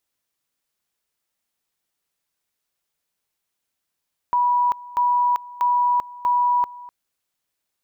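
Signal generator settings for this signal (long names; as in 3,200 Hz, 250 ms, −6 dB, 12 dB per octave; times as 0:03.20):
tone at two levels in turn 976 Hz −15.5 dBFS, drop 20 dB, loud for 0.39 s, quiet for 0.25 s, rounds 4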